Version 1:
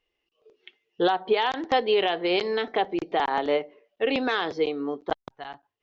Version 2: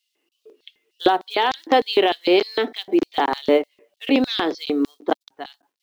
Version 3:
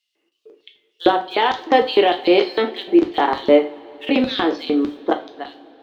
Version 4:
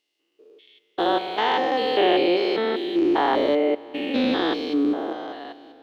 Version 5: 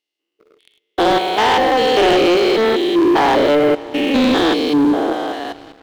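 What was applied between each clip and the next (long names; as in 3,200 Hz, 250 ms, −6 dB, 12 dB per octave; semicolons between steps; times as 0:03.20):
log-companded quantiser 8 bits; auto-filter high-pass square 3.3 Hz 280–4,100 Hz; level +4.5 dB
low-pass filter 3,300 Hz 6 dB per octave; convolution reverb, pre-delay 8 ms, DRR 4.5 dB; level +2 dB
spectrum averaged block by block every 200 ms
leveller curve on the samples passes 3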